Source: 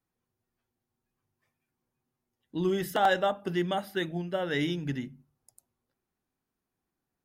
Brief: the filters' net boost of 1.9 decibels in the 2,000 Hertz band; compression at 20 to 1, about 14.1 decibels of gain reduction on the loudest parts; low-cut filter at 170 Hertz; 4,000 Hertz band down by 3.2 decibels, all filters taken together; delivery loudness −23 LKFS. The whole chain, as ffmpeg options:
ffmpeg -i in.wav -af "highpass=170,equalizer=frequency=2000:width_type=o:gain=3.5,equalizer=frequency=4000:width_type=o:gain=-6,acompressor=threshold=-33dB:ratio=20,volume=16dB" out.wav

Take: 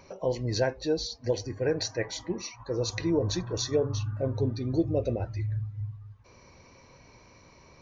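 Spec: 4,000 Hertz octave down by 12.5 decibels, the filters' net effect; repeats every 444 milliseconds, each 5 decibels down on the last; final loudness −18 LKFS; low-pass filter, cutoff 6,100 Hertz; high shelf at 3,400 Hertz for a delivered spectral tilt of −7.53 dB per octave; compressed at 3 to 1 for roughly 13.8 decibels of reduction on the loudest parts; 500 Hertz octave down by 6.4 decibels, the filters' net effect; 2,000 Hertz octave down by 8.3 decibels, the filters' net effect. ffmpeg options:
ffmpeg -i in.wav -af "lowpass=6100,equalizer=frequency=500:width_type=o:gain=-7,equalizer=frequency=2000:width_type=o:gain=-7,highshelf=frequency=3400:gain=-5.5,equalizer=frequency=4000:width_type=o:gain=-8,acompressor=threshold=-44dB:ratio=3,aecho=1:1:444|888|1332|1776|2220|2664|3108:0.562|0.315|0.176|0.0988|0.0553|0.031|0.0173,volume=25.5dB" out.wav

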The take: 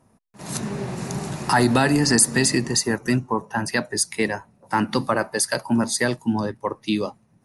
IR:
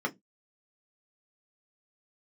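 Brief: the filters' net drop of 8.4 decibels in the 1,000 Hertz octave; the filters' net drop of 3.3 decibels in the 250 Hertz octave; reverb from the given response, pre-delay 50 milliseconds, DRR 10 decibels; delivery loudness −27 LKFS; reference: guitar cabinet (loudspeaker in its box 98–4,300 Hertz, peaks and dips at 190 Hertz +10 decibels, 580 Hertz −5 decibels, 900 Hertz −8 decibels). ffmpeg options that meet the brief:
-filter_complex "[0:a]equalizer=frequency=250:width_type=o:gain=-7,equalizer=frequency=1000:width_type=o:gain=-5,asplit=2[link_01][link_02];[1:a]atrim=start_sample=2205,adelay=50[link_03];[link_02][link_03]afir=irnorm=-1:irlink=0,volume=-17dB[link_04];[link_01][link_04]amix=inputs=2:normalize=0,highpass=98,equalizer=frequency=190:width_type=q:width=4:gain=10,equalizer=frequency=580:width_type=q:width=4:gain=-5,equalizer=frequency=900:width_type=q:width=4:gain=-8,lowpass=frequency=4300:width=0.5412,lowpass=frequency=4300:width=1.3066,volume=-0.5dB"

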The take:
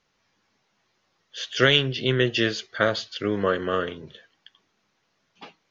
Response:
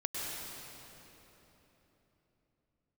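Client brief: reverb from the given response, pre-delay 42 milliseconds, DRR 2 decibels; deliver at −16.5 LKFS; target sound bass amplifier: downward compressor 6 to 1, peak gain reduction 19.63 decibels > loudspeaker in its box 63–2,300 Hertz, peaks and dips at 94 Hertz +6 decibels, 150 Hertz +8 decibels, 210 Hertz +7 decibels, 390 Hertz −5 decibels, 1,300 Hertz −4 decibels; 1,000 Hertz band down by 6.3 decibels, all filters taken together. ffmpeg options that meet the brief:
-filter_complex "[0:a]equalizer=frequency=1000:width_type=o:gain=-5.5,asplit=2[link_01][link_02];[1:a]atrim=start_sample=2205,adelay=42[link_03];[link_02][link_03]afir=irnorm=-1:irlink=0,volume=-6dB[link_04];[link_01][link_04]amix=inputs=2:normalize=0,acompressor=threshold=-34dB:ratio=6,highpass=frequency=63:width=0.5412,highpass=frequency=63:width=1.3066,equalizer=frequency=94:width_type=q:width=4:gain=6,equalizer=frequency=150:width_type=q:width=4:gain=8,equalizer=frequency=210:width_type=q:width=4:gain=7,equalizer=frequency=390:width_type=q:width=4:gain=-5,equalizer=frequency=1300:width_type=q:width=4:gain=-4,lowpass=frequency=2300:width=0.5412,lowpass=frequency=2300:width=1.3066,volume=21dB"

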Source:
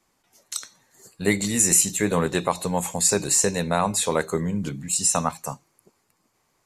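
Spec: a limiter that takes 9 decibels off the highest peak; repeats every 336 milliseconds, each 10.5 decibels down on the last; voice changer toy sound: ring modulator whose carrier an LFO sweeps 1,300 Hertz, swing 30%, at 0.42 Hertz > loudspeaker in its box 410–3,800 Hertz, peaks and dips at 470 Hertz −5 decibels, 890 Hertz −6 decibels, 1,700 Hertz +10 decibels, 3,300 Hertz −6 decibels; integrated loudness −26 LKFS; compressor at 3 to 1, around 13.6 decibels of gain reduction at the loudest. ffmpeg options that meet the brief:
ffmpeg -i in.wav -af "acompressor=threshold=-34dB:ratio=3,alimiter=level_in=1.5dB:limit=-24dB:level=0:latency=1,volume=-1.5dB,aecho=1:1:336|672|1008:0.299|0.0896|0.0269,aeval=exprs='val(0)*sin(2*PI*1300*n/s+1300*0.3/0.42*sin(2*PI*0.42*n/s))':channel_layout=same,highpass=410,equalizer=frequency=470:width_type=q:width=4:gain=-5,equalizer=frequency=890:width_type=q:width=4:gain=-6,equalizer=frequency=1700:width_type=q:width=4:gain=10,equalizer=frequency=3300:width_type=q:width=4:gain=-6,lowpass=frequency=3800:width=0.5412,lowpass=frequency=3800:width=1.3066,volume=10.5dB" out.wav

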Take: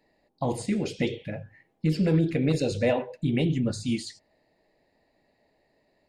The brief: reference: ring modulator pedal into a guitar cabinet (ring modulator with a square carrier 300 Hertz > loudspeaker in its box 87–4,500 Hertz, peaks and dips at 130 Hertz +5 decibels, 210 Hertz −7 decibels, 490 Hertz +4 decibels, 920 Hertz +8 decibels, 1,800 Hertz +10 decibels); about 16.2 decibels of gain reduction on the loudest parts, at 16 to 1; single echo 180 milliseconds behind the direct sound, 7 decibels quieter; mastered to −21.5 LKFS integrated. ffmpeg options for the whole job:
ffmpeg -i in.wav -af "acompressor=threshold=-35dB:ratio=16,aecho=1:1:180:0.447,aeval=exprs='val(0)*sgn(sin(2*PI*300*n/s))':channel_layout=same,highpass=87,equalizer=frequency=130:width_type=q:width=4:gain=5,equalizer=frequency=210:width_type=q:width=4:gain=-7,equalizer=frequency=490:width_type=q:width=4:gain=4,equalizer=frequency=920:width_type=q:width=4:gain=8,equalizer=frequency=1800:width_type=q:width=4:gain=10,lowpass=frequency=4500:width=0.5412,lowpass=frequency=4500:width=1.3066,volume=16dB" out.wav

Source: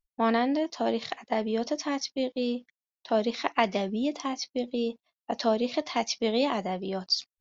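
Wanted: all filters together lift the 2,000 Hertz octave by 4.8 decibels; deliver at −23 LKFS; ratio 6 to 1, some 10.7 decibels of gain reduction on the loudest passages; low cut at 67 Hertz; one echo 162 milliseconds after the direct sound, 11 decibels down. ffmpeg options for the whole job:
ffmpeg -i in.wav -af "highpass=67,equalizer=frequency=2000:width_type=o:gain=5.5,acompressor=threshold=-29dB:ratio=6,aecho=1:1:162:0.282,volume=11dB" out.wav

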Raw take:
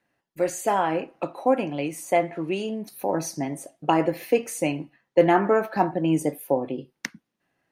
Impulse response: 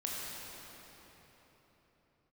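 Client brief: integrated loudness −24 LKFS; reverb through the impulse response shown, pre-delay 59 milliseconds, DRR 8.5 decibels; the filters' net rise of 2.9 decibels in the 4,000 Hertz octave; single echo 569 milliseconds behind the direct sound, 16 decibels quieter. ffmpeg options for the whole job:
-filter_complex "[0:a]equalizer=frequency=4000:width_type=o:gain=4.5,aecho=1:1:569:0.158,asplit=2[link_01][link_02];[1:a]atrim=start_sample=2205,adelay=59[link_03];[link_02][link_03]afir=irnorm=-1:irlink=0,volume=-12dB[link_04];[link_01][link_04]amix=inputs=2:normalize=0,volume=0.5dB"

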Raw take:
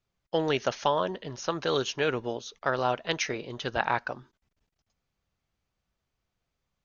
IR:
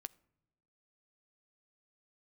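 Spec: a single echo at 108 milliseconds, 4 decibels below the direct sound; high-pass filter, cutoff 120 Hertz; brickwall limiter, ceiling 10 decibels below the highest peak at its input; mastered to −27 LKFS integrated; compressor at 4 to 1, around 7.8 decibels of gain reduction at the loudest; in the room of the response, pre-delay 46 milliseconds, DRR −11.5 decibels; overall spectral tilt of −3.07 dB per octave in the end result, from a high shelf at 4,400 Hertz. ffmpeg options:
-filter_complex "[0:a]highpass=120,highshelf=frequency=4400:gain=5.5,acompressor=threshold=-30dB:ratio=4,alimiter=limit=-24dB:level=0:latency=1,aecho=1:1:108:0.631,asplit=2[link_01][link_02];[1:a]atrim=start_sample=2205,adelay=46[link_03];[link_02][link_03]afir=irnorm=-1:irlink=0,volume=16.5dB[link_04];[link_01][link_04]amix=inputs=2:normalize=0,volume=-2.5dB"

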